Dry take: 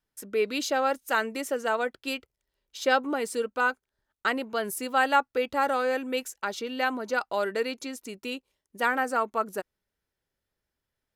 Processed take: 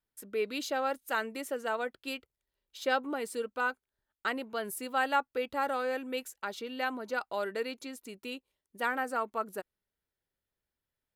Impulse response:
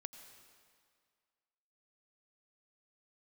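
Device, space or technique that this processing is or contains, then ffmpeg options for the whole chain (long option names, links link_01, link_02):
exciter from parts: -filter_complex "[0:a]asplit=2[link_01][link_02];[link_02]highpass=3700,asoftclip=type=tanh:threshold=-32dB,highpass=frequency=4400:width=0.5412,highpass=frequency=4400:width=1.3066,volume=-7dB[link_03];[link_01][link_03]amix=inputs=2:normalize=0,volume=-6dB"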